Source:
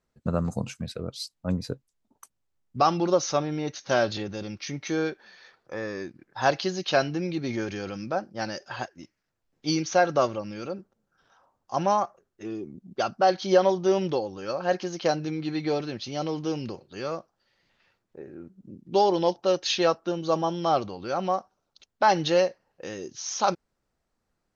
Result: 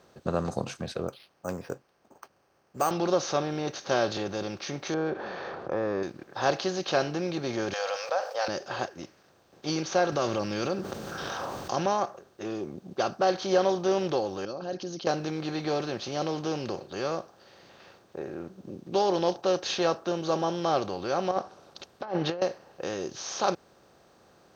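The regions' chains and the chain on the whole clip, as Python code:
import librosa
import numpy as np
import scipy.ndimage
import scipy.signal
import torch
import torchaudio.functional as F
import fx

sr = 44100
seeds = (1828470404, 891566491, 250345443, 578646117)

y = fx.chain(x, sr, fx.lowpass(hz=2600.0, slope=24),
    fx.low_shelf(hz=430.0, db=-10.0),
    fx.resample_bad(factor=6, down='filtered', up='hold'), at=(1.08, 2.91))
y = fx.chain(y, sr, fx.lowpass(hz=1200.0, slope=12),
    fx.env_flatten(amount_pct=50), at=(4.94, 6.03))
y = fx.chain(y, sr, fx.brickwall_highpass(low_hz=460.0),
    fx.env_flatten(amount_pct=50), at=(7.73, 8.48))
y = fx.chain(y, sr, fx.peak_eq(hz=670.0, db=-7.5, octaves=2.1),
    fx.env_flatten(amount_pct=70), at=(10.12, 11.86))
y = fx.chain(y, sr, fx.envelope_sharpen(power=1.5),
    fx.band_shelf(hz=990.0, db=-14.5, octaves=3.0), at=(14.45, 15.07))
y = fx.chain(y, sr, fx.env_lowpass_down(base_hz=1100.0, full_db=-17.0),
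    fx.over_compress(threshold_db=-28.0, ratio=-0.5),
    fx.notch(hz=6300.0, q=15.0), at=(21.31, 22.42))
y = fx.bin_compress(y, sr, power=0.6)
y = scipy.signal.sosfilt(scipy.signal.butter(2, 56.0, 'highpass', fs=sr, output='sos'), y)
y = fx.peak_eq(y, sr, hz=430.0, db=2.0, octaves=0.77)
y = y * 10.0 ** (-7.0 / 20.0)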